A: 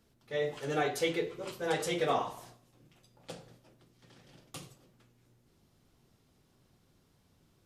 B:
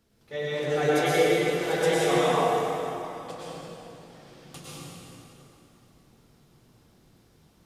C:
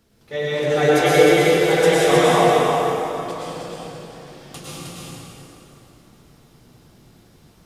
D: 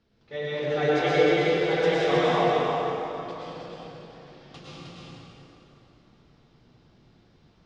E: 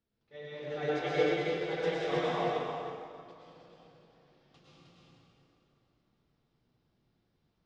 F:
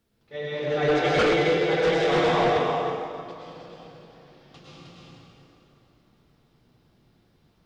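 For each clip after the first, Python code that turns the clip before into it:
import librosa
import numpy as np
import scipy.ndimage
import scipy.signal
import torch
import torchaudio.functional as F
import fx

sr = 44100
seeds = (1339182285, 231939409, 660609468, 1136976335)

y1 = fx.rev_plate(x, sr, seeds[0], rt60_s=3.3, hf_ratio=0.75, predelay_ms=90, drr_db=-8.0)
y2 = y1 + 10.0 ** (-4.0 / 20.0) * np.pad(y1, (int(311 * sr / 1000.0), 0))[:len(y1)]
y2 = y2 * librosa.db_to_amplitude(7.0)
y3 = scipy.signal.sosfilt(scipy.signal.butter(4, 5000.0, 'lowpass', fs=sr, output='sos'), y2)
y3 = y3 * librosa.db_to_amplitude(-7.5)
y4 = fx.upward_expand(y3, sr, threshold_db=-37.0, expansion=1.5)
y4 = y4 * librosa.db_to_amplitude(-6.5)
y5 = fx.fold_sine(y4, sr, drive_db=9, ceiling_db=-16.5)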